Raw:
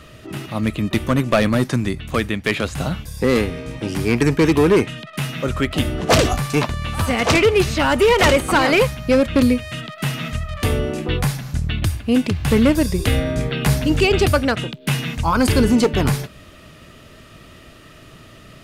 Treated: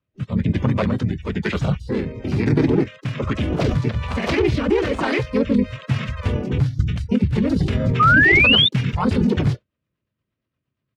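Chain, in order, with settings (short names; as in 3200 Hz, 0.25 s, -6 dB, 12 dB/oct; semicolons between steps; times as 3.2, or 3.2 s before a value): Chebyshev band-pass 120–5000 Hz, order 2; low shelf 140 Hz +9 dB; limiter -12.5 dBFS, peak gain reduction 9.5 dB; gate -35 dBFS, range -12 dB; spectral noise reduction 26 dB; high shelf 3200 Hz -5 dB; rotary speaker horn 0.65 Hz, later 5 Hz, at 11.22; harmoniser -5 st -11 dB, -3 st 0 dB, +12 st -16 dB; painted sound rise, 13.6–14.75, 1200–3700 Hz -13 dBFS; tempo 1.7×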